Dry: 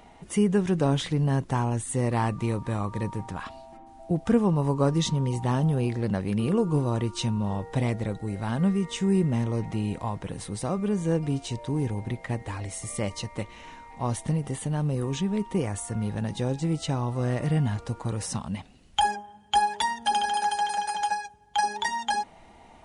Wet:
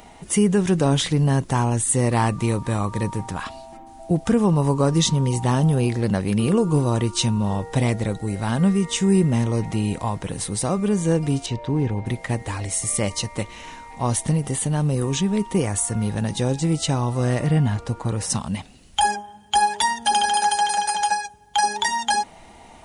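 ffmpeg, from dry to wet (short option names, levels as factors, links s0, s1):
-filter_complex "[0:a]asettb=1/sr,asplit=3[s0][s1][s2];[s0]atrim=end=11.464[s3];[s1]atrim=start=11.46:end=12.06,asetpts=PTS-STARTPTS,afade=t=in:d=0.004:c=qsin,afade=t=out:st=0.596:d=0.004:c=qsin,lowpass=3200[s4];[s2]atrim=start=12.056[s5];[s3][s4]acrossfade=d=0.004:c1=hsin:c2=qsin[s6];[s6][s5]acrossfade=d=0.004:c1=qsin:c2=hsin,asettb=1/sr,asplit=3[s7][s8][s9];[s7]atrim=end=17.424[s10];[s8]atrim=start=17.42:end=18.3,asetpts=PTS-STARTPTS,afade=t=in:d=0.004:c=qsin,afade=t=out:st=0.876:d=0.004:c=qsin,highshelf=f=4400:g=-9[s11];[s9]atrim=start=18.296[s12];[s10][s11]acrossfade=d=0.004:c1=hsin:c2=qsin[s13];[s13][s12]acrossfade=d=0.004:c1=qsin:c2=hsin,highshelf=f=5000:g=9.5,alimiter=level_in=4.47:limit=0.891:release=50:level=0:latency=1,volume=0.422"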